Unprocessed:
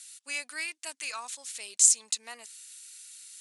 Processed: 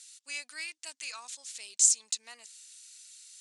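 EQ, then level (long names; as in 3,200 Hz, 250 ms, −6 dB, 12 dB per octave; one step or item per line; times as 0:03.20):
Chebyshev low-pass filter 6,600 Hz, order 2
high-shelf EQ 2,600 Hz +9 dB
−8.0 dB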